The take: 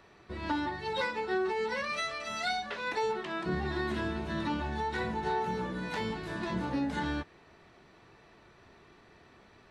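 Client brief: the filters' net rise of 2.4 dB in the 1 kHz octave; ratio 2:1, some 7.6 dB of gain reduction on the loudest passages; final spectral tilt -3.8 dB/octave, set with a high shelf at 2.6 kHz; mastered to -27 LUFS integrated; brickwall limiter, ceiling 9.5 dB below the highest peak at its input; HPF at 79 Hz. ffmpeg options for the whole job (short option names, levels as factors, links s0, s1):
-af "highpass=79,equalizer=f=1000:t=o:g=3.5,highshelf=f=2600:g=-4.5,acompressor=threshold=0.01:ratio=2,volume=5.62,alimiter=limit=0.112:level=0:latency=1"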